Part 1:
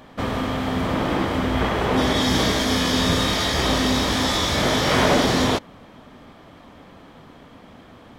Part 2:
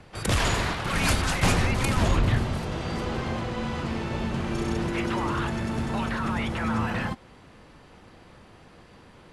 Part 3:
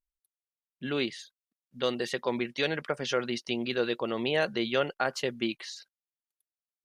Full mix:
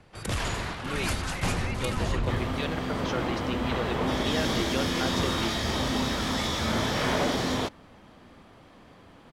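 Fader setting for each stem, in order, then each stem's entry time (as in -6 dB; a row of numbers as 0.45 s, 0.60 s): -8.5 dB, -6.0 dB, -5.0 dB; 2.10 s, 0.00 s, 0.00 s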